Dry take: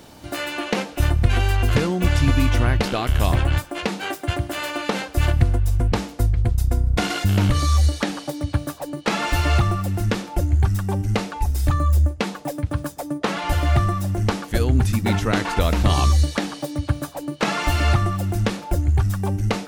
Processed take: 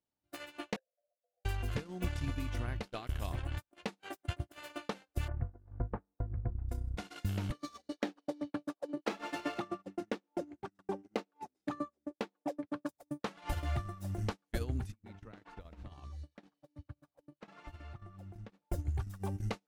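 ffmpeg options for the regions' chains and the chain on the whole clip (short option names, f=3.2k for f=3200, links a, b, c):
-filter_complex "[0:a]asettb=1/sr,asplit=3[a][b][c];[a]atrim=end=0.764[d];[b]atrim=start=0.76:end=1.45,asetpts=PTS-STARTPTS,afade=t=in:d=0.004:c=qsin,afade=t=out:st=0.686:d=0.004:c=qsin,asuperpass=centerf=580:order=8:qfactor=2.8,aeval=exprs='0.0447*(abs(mod(val(0)/0.0447+3,4)-2)-1)':c=same[e];[c]atrim=start=1.446[f];[d][e]acrossfade=d=0.004:c1=hsin:c2=qsin[g];[g][f]acrossfade=d=0.004:c1=qsin:c2=hsin,asettb=1/sr,asplit=3[h][i][j];[h]atrim=end=5.284[k];[i]atrim=start=5.28:end=6.69,asetpts=PTS-STARTPTS,afade=t=in:d=0.004:c=qsin,afade=t=out:st=1.406:d=0.004:c=qsin,lowpass=f=1.5k:w=0.5412,lowpass=f=1.5k:w=1.3066,bandreject=f=50:t=h:w=6,bandreject=f=100:t=h:w=6,bandreject=f=150:t=h:w=6,bandreject=f=200:t=h:w=6,bandreject=f=250:t=h:w=6,bandreject=f=300:t=h:w=6,bandreject=f=350:t=h:w=6,bandreject=f=400:t=h:w=6,bandreject=f=450:t=h:w=6[l];[j]atrim=start=6.686[m];[k][l]acrossfade=d=0.004:c1=hsin:c2=qsin[n];[n][m]acrossfade=d=0.004:c1=qsin:c2=hsin,asettb=1/sr,asplit=3[o][p][q];[o]atrim=end=7.524[r];[p]atrim=start=7.52:end=12.89,asetpts=PTS-STARTPTS,afade=t=in:d=0.004:c=qsin,afade=t=out:st=5.366:d=0.004:c=qsin,highpass=f=260:w=0.5412,highpass=f=260:w=1.3066,adynamicsmooth=sensitivity=5.5:basefreq=4.3k,lowshelf=f=490:g=10.5[s];[q]atrim=start=12.886[t];[r][s]acrossfade=d=0.004:c1=hsin:c2=qsin[u];[u][t]acrossfade=d=0.004:c1=qsin:c2=hsin,asettb=1/sr,asplit=3[v][w][x];[v]atrim=end=14.924[y];[w]atrim=start=14.92:end=18.65,asetpts=PTS-STARTPTS,afade=t=in:d=0.004:c=qsin,afade=t=out:st=3.726:d=0.004:c=qsin,lowpass=f=2.2k:p=1,acompressor=threshold=-24dB:ratio=16:attack=3.2:release=140:knee=1:detection=peak[z];[x]atrim=start=18.646[aa];[y][z]acrossfade=d=0.004:c1=hsin:c2=qsin[ab];[ab][aa]acrossfade=d=0.004:c1=qsin:c2=hsin,acompressor=threshold=-24dB:ratio=8,agate=range=-43dB:threshold=-26dB:ratio=16:detection=peak,volume=-6dB"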